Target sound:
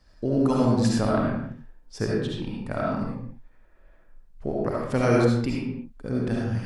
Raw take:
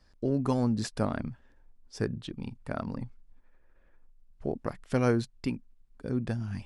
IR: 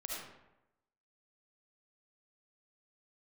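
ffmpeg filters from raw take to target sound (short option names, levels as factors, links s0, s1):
-filter_complex "[1:a]atrim=start_sample=2205,afade=t=out:st=0.4:d=0.01,atrim=end_sample=18081[s0];[0:a][s0]afir=irnorm=-1:irlink=0,volume=2.37"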